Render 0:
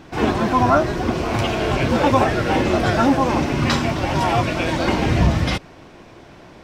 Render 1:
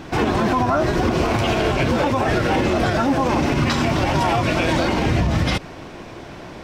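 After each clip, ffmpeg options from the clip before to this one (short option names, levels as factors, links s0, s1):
-af "acompressor=threshold=0.141:ratio=6,alimiter=limit=0.141:level=0:latency=1:release=84,volume=2.24"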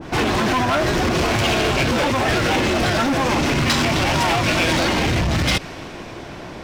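-af "asoftclip=type=hard:threshold=0.119,adynamicequalizer=threshold=0.0141:dfrequency=1600:dqfactor=0.7:tfrequency=1600:tqfactor=0.7:attack=5:release=100:ratio=0.375:range=3:mode=boostabove:tftype=highshelf,volume=1.26"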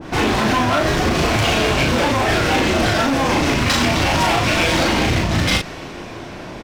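-filter_complex "[0:a]asplit=2[s0][s1];[s1]adelay=37,volume=0.708[s2];[s0][s2]amix=inputs=2:normalize=0"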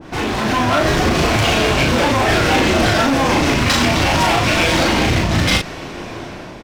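-af "dynaudnorm=f=160:g=7:m=3.55,volume=0.668"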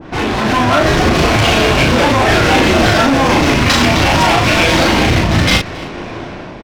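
-af "adynamicsmooth=sensitivity=3:basefreq=4300,aecho=1:1:274:0.075,volume=1.58"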